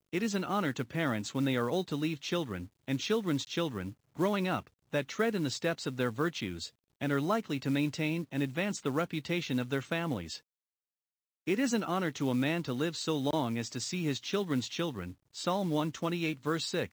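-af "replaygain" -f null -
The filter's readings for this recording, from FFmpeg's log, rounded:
track_gain = +13.8 dB
track_peak = 0.110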